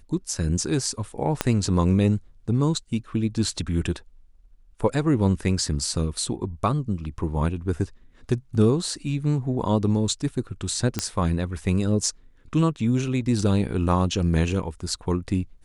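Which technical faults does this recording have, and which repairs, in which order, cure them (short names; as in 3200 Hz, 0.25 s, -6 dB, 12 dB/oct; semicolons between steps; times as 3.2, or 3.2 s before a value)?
1.41 pop -6 dBFS
10.99 pop -9 dBFS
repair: de-click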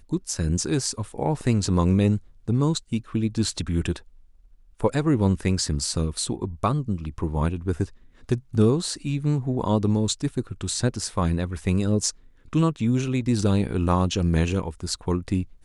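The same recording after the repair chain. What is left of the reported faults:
1.41 pop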